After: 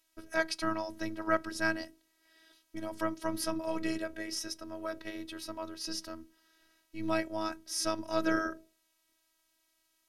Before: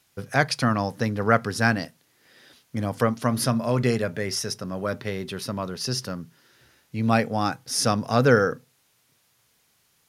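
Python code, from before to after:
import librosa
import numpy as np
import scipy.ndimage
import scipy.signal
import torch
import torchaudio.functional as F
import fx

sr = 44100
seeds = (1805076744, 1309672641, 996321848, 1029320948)

y = fx.hum_notches(x, sr, base_hz=50, count=10)
y = fx.robotise(y, sr, hz=322.0)
y = F.gain(torch.from_numpy(y), -7.0).numpy()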